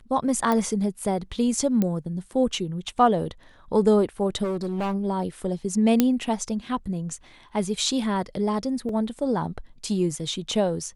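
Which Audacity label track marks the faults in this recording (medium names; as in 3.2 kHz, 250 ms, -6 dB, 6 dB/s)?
0.520000	0.520000	pop
1.820000	1.820000	pop -12 dBFS
4.430000	4.950000	clipped -23.5 dBFS
6.000000	6.000000	pop -4 dBFS
8.890000	8.890000	dropout 2.3 ms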